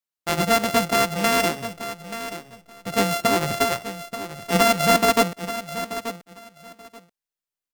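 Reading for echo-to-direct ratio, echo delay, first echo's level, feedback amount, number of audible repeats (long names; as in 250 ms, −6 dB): −12.0 dB, 882 ms, −12.0 dB, 18%, 2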